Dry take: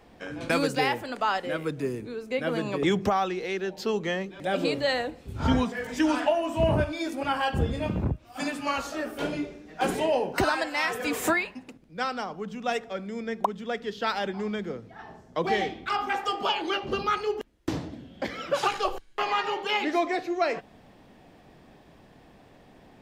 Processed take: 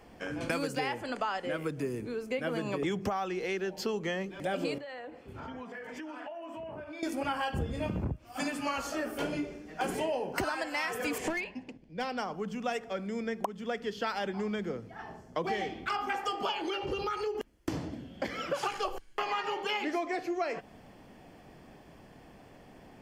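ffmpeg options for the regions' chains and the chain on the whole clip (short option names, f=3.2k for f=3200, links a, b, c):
-filter_complex "[0:a]asettb=1/sr,asplit=3[a][b][c];[a]atrim=end=0.794[d];[b]atrim=start=0.79:end=1.54,asetpts=PTS-STARTPTS,afade=t=in:d=0.004:c=qsin,afade=t=out:st=0.746:d=0.004:c=qsin,lowpass=9.1k,bandreject=f=5.5k:w=18[e];[c]atrim=start=1.536[f];[d][e]acrossfade=d=0.004:c1=hsin:c2=qsin[g];[g][f]acrossfade=d=0.004:c1=qsin:c2=hsin,asettb=1/sr,asplit=3[h][i][j];[h]atrim=end=4.784[k];[i]atrim=start=4.78:end=7.03,asetpts=PTS-STARTPTS,afade=t=in:d=0.004:c=qsin,afade=t=out:st=2.246:d=0.004:c=qsin,highpass=f=130:p=1,bass=f=250:g=-7,treble=f=4k:g=-14,acompressor=threshold=-39dB:ratio=10:attack=3.2:release=140:knee=1:detection=peak[l];[j]atrim=start=7.026[m];[k][l]acrossfade=d=0.004:c1=hsin:c2=qsin[n];[n][m]acrossfade=d=0.004:c1=qsin:c2=hsin,asettb=1/sr,asplit=3[o][p][q];[o]atrim=end=11.184[r];[p]atrim=start=11.18:end=12.18,asetpts=PTS-STARTPTS,afade=t=in:d=0.004:c=qsin,afade=t=out:st=0.996:d=0.004:c=qsin,lowpass=4.6k,equalizer=f=1.3k:w=3.6:g=-12.5,aeval=exprs='clip(val(0),-1,0.0473)':c=same[s];[q]atrim=start=12.176[t];[r][s]acrossfade=d=0.004:c1=hsin:c2=qsin[u];[u][t]acrossfade=d=0.004:c1=qsin:c2=hsin,asettb=1/sr,asplit=3[v][w][x];[v]atrim=end=16.684[y];[w]atrim=start=16.68:end=17.35,asetpts=PTS-STARTPTS,afade=t=in:d=0.004:c=qsin,afade=t=out:st=0.666:d=0.004:c=qsin,highpass=45,aecho=1:1:2.2:0.66,atrim=end_sample=29547,acompressor=threshold=-29dB:ratio=3:attack=3.2:release=140:knee=1:detection=peak[z];[x]atrim=start=17.346[aa];[y][z]acrossfade=d=0.004:c1=hsin:c2=qsin[ab];[ab][aa]acrossfade=d=0.004:c1=qsin:c2=hsin,equalizer=f=12k:w=0.56:g=2.5,bandreject=f=3.8k:w=6.6,acompressor=threshold=-30dB:ratio=4"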